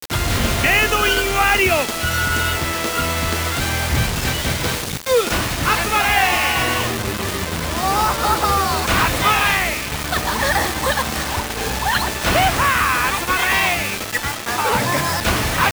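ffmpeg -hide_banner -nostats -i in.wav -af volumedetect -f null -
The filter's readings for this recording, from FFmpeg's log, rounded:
mean_volume: -18.9 dB
max_volume: -1.9 dB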